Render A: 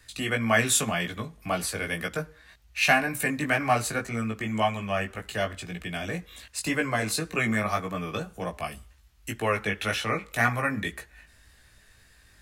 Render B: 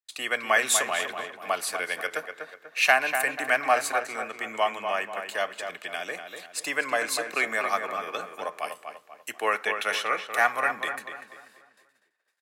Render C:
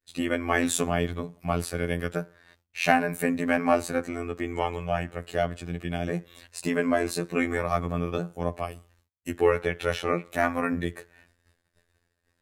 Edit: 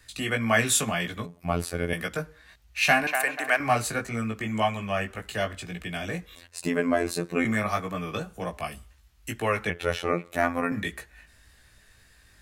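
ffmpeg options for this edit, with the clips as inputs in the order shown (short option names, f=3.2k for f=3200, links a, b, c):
-filter_complex "[2:a]asplit=3[a][b][c];[0:a]asplit=5[d][e][f][g][h];[d]atrim=end=1.262[i];[a]atrim=start=1.258:end=1.932[j];[e]atrim=start=1.928:end=3.072[k];[1:a]atrim=start=3.068:end=3.602[l];[f]atrim=start=3.598:end=6.352[m];[b]atrim=start=6.348:end=7.452[n];[g]atrim=start=7.448:end=9.702[o];[c]atrim=start=9.698:end=10.722[p];[h]atrim=start=10.718[q];[i][j]acrossfade=d=0.004:c1=hsin:c2=hsin[r];[r][k]acrossfade=d=0.004:c1=hsin:c2=hsin[s];[s][l]acrossfade=d=0.004:c1=hsin:c2=hsin[t];[t][m]acrossfade=d=0.004:c1=hsin:c2=hsin[u];[u][n]acrossfade=d=0.004:c1=hsin:c2=hsin[v];[v][o]acrossfade=d=0.004:c1=hsin:c2=hsin[w];[w][p]acrossfade=d=0.004:c1=hsin:c2=hsin[x];[x][q]acrossfade=d=0.004:c1=hsin:c2=hsin"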